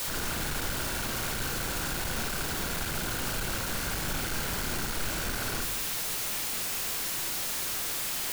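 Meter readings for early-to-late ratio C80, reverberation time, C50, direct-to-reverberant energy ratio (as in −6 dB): 11.5 dB, 0.95 s, 9.5 dB, 5.0 dB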